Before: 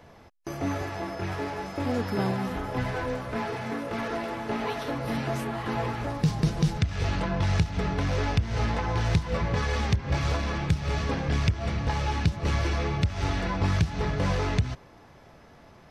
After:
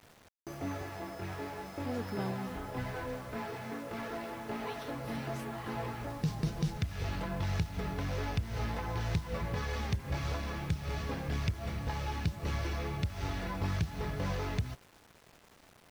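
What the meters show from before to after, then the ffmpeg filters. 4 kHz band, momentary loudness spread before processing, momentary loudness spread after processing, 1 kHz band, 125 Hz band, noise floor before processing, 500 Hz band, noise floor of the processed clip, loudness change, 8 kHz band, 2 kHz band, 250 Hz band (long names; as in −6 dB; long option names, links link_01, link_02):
−8.5 dB, 6 LU, 6 LU, −8.5 dB, −8.5 dB, −52 dBFS, −8.5 dB, −61 dBFS, −8.5 dB, −7.0 dB, −8.5 dB, −8.5 dB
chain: -af "acrusher=bits=7:mix=0:aa=0.000001,volume=-8.5dB"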